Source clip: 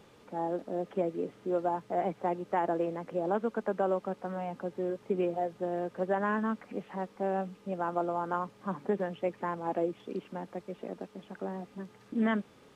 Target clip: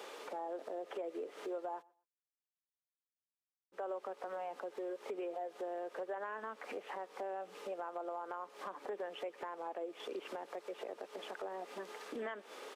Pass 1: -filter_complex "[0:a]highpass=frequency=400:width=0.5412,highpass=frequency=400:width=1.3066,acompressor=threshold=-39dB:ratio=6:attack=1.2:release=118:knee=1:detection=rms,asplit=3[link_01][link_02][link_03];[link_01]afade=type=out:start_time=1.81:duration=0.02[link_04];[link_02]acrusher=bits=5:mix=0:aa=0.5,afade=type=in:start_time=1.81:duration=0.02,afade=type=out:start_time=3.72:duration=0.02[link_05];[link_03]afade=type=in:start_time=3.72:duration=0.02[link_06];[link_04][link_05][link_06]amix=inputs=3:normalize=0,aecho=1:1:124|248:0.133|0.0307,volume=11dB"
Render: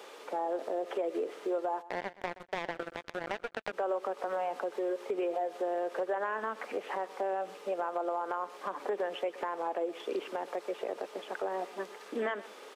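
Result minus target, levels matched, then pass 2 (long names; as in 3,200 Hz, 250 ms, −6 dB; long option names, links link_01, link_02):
downward compressor: peak gain reduction −8.5 dB; echo-to-direct +8 dB
-filter_complex "[0:a]highpass=frequency=400:width=0.5412,highpass=frequency=400:width=1.3066,acompressor=threshold=-49.5dB:ratio=6:attack=1.2:release=118:knee=1:detection=rms,asplit=3[link_01][link_02][link_03];[link_01]afade=type=out:start_time=1.81:duration=0.02[link_04];[link_02]acrusher=bits=5:mix=0:aa=0.5,afade=type=in:start_time=1.81:duration=0.02,afade=type=out:start_time=3.72:duration=0.02[link_05];[link_03]afade=type=in:start_time=3.72:duration=0.02[link_06];[link_04][link_05][link_06]amix=inputs=3:normalize=0,aecho=1:1:124|248:0.0531|0.0122,volume=11dB"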